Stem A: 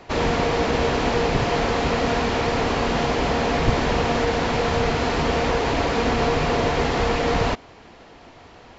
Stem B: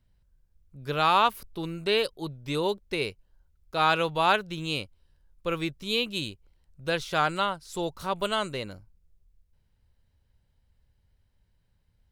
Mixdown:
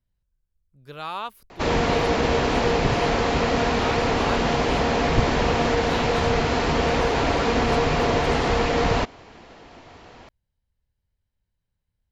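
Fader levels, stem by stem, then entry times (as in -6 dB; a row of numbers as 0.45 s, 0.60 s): 0.0 dB, -10.0 dB; 1.50 s, 0.00 s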